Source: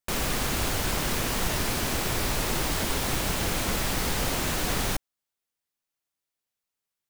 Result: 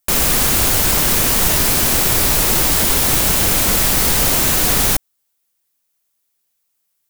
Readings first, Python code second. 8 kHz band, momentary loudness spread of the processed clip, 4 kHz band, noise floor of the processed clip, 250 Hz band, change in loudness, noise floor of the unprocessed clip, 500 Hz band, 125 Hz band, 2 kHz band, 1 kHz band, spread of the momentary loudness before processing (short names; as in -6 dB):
+15.5 dB, 0 LU, +11.5 dB, -70 dBFS, +8.5 dB, +14.5 dB, under -85 dBFS, +8.5 dB, +8.5 dB, +9.5 dB, +8.5 dB, 0 LU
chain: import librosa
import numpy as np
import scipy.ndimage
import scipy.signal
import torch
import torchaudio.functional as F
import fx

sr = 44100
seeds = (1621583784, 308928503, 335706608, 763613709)

y = fx.high_shelf(x, sr, hz=7000.0, db=12.0)
y = y * 10.0 ** (8.5 / 20.0)